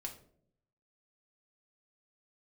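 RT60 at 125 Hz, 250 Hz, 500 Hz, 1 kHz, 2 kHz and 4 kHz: 1.0 s, 0.90 s, 0.80 s, 0.50 s, 0.40 s, 0.35 s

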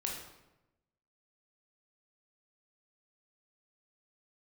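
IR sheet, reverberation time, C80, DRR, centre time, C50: 0.95 s, 6.0 dB, -1.5 dB, 45 ms, 3.0 dB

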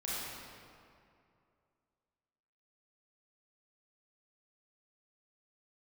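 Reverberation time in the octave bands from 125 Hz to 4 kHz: 2.6 s, 2.5 s, 2.5 s, 2.4 s, 2.0 s, 1.5 s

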